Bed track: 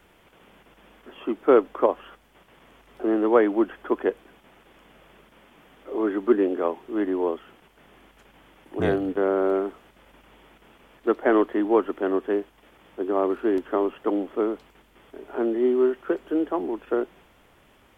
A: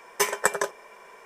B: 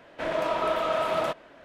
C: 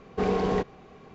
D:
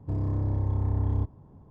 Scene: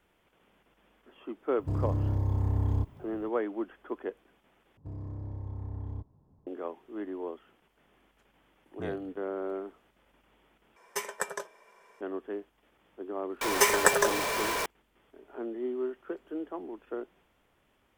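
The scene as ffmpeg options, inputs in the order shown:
ffmpeg -i bed.wav -i cue0.wav -i cue1.wav -i cue2.wav -i cue3.wav -filter_complex "[4:a]asplit=2[link_01][link_02];[1:a]asplit=2[link_03][link_04];[0:a]volume=-12.5dB[link_05];[link_01]aemphasis=mode=production:type=75kf[link_06];[link_03]bandreject=frequency=317.3:width_type=h:width=4,bandreject=frequency=634.6:width_type=h:width=4,bandreject=frequency=951.9:width_type=h:width=4,bandreject=frequency=1269.2:width_type=h:width=4,bandreject=frequency=1586.5:width_type=h:width=4,bandreject=frequency=1903.8:width_type=h:width=4,bandreject=frequency=2221.1:width_type=h:width=4,bandreject=frequency=2538.4:width_type=h:width=4,bandreject=frequency=2855.7:width_type=h:width=4,bandreject=frequency=3173:width_type=h:width=4,bandreject=frequency=3490.3:width_type=h:width=4,bandreject=frequency=3807.6:width_type=h:width=4[link_07];[link_04]aeval=exprs='val(0)+0.5*0.0596*sgn(val(0))':channel_layout=same[link_08];[link_05]asplit=3[link_09][link_10][link_11];[link_09]atrim=end=4.774[link_12];[link_02]atrim=end=1.7,asetpts=PTS-STARTPTS,volume=-12dB[link_13];[link_10]atrim=start=6.466:end=10.764[link_14];[link_07]atrim=end=1.25,asetpts=PTS-STARTPTS,volume=-10.5dB[link_15];[link_11]atrim=start=12.006[link_16];[link_06]atrim=end=1.7,asetpts=PTS-STARTPTS,volume=-1.5dB,afade=type=in:duration=0.004:curve=hsin,afade=type=out:start_time=1.696:duration=0.004:curve=hsin,adelay=1590[link_17];[link_08]atrim=end=1.25,asetpts=PTS-STARTPTS,volume=-1dB,afade=type=in:duration=0.004:curve=hsin,afade=type=out:start_time=1.246:duration=0.004:curve=hsin,adelay=13410[link_18];[link_12][link_13]acrossfade=duration=0.004:curve1=hsin:curve2=hsin[link_19];[link_19][link_14]acrossfade=duration=0.004:curve1=hsin:curve2=hsin[link_20];[link_20][link_15]acrossfade=duration=0.004:curve1=hsin:curve2=hsin[link_21];[link_21][link_16]acrossfade=duration=0.004:curve1=hsin:curve2=hsin[link_22];[link_22][link_17][link_18]amix=inputs=3:normalize=0" out.wav

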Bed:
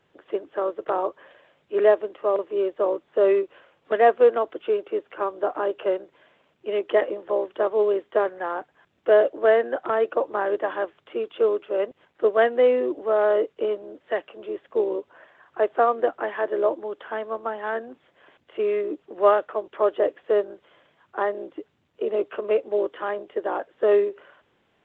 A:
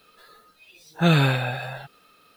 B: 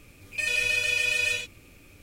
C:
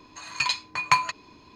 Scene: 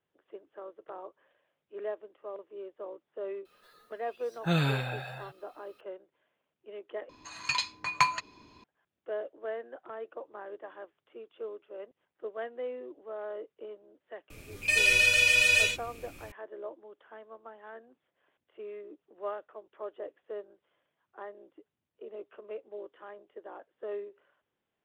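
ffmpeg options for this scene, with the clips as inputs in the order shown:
ffmpeg -i bed.wav -i cue0.wav -i cue1.wav -i cue2.wav -filter_complex "[0:a]volume=-19dB[link_01];[2:a]acontrast=46[link_02];[link_01]asplit=2[link_03][link_04];[link_03]atrim=end=7.094[link_05];[3:a]atrim=end=1.55,asetpts=PTS-STARTPTS,volume=-4.5dB[link_06];[link_04]atrim=start=8.636[link_07];[1:a]atrim=end=2.36,asetpts=PTS-STARTPTS,volume=-9dB,afade=type=in:duration=0.004:curve=hsin,afade=type=out:start_time=2.356:duration=0.004:curve=hsin,adelay=152145S[link_08];[link_02]atrim=end=2.02,asetpts=PTS-STARTPTS,volume=-3dB,afade=type=in:duration=0.004:curve=hsin,afade=type=out:start_time=2.016:duration=0.004:curve=hsin,adelay=14300[link_09];[link_05][link_06]acrossfade=duration=0.004:curve1=hsin:curve2=hsin[link_10];[link_10][link_07]acrossfade=duration=0.004:curve1=hsin:curve2=hsin[link_11];[link_11][link_08][link_09]amix=inputs=3:normalize=0" out.wav

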